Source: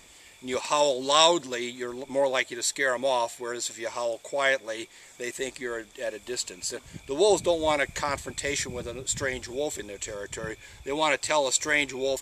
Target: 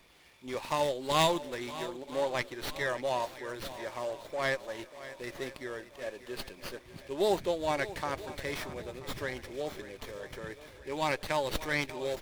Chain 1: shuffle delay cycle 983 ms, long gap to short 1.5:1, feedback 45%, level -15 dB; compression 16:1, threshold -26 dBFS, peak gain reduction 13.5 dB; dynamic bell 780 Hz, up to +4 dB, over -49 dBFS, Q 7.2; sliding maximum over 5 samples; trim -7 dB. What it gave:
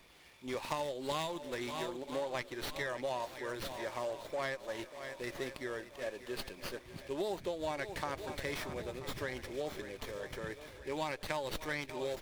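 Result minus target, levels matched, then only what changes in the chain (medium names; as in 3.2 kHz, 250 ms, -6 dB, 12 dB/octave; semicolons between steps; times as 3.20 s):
compression: peak gain reduction +13.5 dB
remove: compression 16:1, threshold -26 dBFS, peak gain reduction 13.5 dB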